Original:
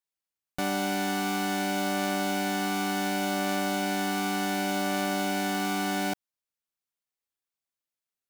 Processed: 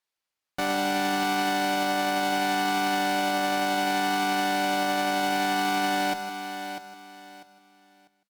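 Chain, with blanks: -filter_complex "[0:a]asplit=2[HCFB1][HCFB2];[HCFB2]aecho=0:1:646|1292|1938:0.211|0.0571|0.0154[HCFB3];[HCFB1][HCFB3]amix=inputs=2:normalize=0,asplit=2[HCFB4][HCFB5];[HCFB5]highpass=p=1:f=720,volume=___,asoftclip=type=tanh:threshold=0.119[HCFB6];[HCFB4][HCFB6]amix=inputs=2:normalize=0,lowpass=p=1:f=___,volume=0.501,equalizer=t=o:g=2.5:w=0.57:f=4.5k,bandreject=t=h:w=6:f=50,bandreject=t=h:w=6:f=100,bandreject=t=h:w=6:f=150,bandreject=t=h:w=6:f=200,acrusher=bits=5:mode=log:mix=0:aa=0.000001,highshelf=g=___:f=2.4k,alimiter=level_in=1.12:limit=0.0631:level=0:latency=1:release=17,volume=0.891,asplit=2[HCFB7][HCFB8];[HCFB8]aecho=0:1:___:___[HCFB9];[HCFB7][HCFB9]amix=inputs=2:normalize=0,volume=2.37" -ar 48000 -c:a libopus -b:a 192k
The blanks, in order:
1.78, 1.6k, 5.5, 157, 0.224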